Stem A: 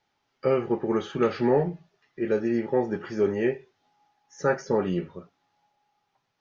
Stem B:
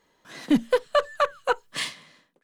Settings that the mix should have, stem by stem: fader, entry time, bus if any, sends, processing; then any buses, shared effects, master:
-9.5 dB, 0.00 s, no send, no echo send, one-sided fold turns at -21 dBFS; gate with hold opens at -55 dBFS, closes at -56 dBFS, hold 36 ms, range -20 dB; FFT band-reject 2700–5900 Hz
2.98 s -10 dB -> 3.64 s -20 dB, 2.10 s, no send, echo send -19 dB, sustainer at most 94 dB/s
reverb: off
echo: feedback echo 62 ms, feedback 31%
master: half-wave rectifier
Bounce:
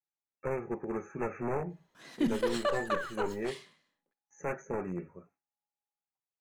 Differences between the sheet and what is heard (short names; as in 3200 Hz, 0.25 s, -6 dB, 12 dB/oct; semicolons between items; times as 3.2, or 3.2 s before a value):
stem B: entry 2.10 s -> 1.70 s; master: missing half-wave rectifier